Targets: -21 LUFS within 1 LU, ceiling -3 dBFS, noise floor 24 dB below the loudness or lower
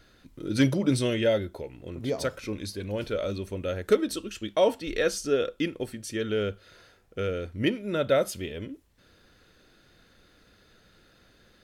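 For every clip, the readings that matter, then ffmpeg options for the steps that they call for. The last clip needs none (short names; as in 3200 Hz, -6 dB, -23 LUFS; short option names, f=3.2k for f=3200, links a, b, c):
loudness -28.5 LUFS; peak -11.5 dBFS; loudness target -21.0 LUFS
-> -af "volume=7.5dB"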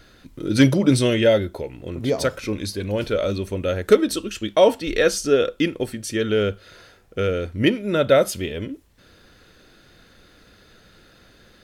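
loudness -21.0 LUFS; peak -4.0 dBFS; noise floor -53 dBFS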